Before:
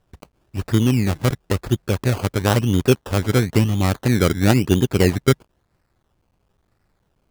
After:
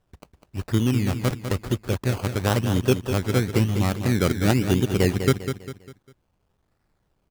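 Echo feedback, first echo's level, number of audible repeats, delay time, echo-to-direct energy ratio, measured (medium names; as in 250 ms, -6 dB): 39%, -8.5 dB, 4, 200 ms, -8.0 dB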